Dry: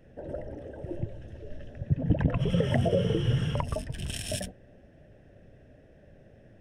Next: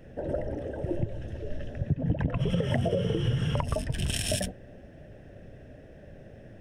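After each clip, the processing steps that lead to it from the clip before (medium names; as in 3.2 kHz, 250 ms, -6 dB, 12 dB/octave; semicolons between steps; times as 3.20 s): compression 6:1, threshold -30 dBFS, peak gain reduction 11.5 dB; trim +6.5 dB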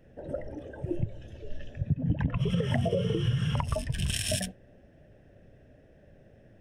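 spectral noise reduction 8 dB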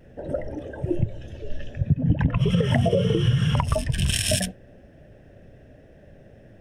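vibrato 0.38 Hz 11 cents; trim +7 dB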